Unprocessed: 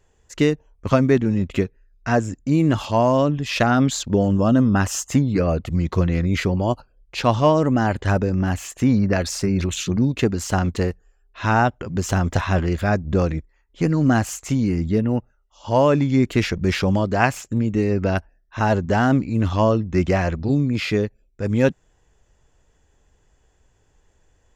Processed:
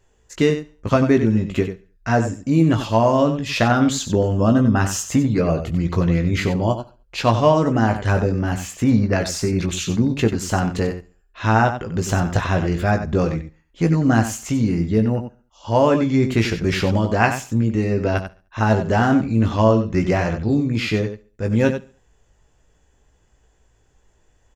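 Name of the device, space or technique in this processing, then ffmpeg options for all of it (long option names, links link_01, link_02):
slapback doubling: -filter_complex "[0:a]aecho=1:1:70|140|210:0.0794|0.0334|0.014,asplit=3[link_01][link_02][link_03];[link_02]adelay=18,volume=-6.5dB[link_04];[link_03]adelay=93,volume=-9.5dB[link_05];[link_01][link_04][link_05]amix=inputs=3:normalize=0"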